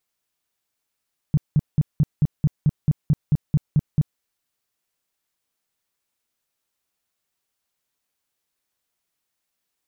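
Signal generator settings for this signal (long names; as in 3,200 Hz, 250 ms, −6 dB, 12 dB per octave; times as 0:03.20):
tone bursts 150 Hz, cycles 5, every 0.22 s, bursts 13, −12.5 dBFS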